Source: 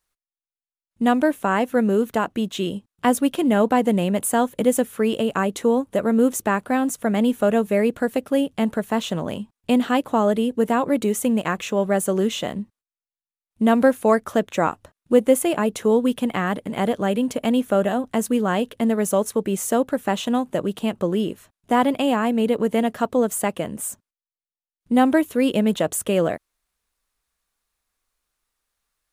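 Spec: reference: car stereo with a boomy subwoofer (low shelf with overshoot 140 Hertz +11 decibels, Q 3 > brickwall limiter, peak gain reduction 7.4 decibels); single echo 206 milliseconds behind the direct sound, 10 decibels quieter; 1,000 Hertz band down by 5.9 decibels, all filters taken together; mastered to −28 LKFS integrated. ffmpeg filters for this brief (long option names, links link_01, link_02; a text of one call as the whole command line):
ffmpeg -i in.wav -af "lowshelf=frequency=140:width_type=q:width=3:gain=11,equalizer=frequency=1000:width_type=o:gain=-8,aecho=1:1:206:0.316,volume=-2dB,alimiter=limit=-16.5dB:level=0:latency=1" out.wav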